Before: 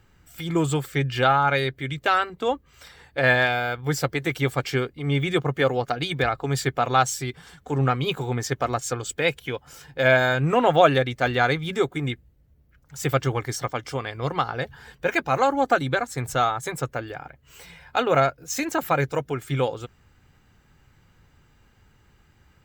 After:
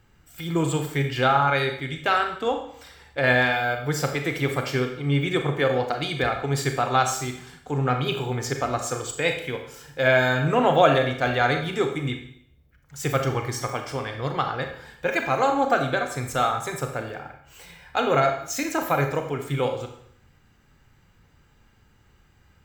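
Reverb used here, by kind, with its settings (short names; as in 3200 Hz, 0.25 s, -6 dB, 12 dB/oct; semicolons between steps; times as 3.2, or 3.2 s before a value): Schroeder reverb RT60 0.66 s, combs from 28 ms, DRR 4.5 dB; gain -1.5 dB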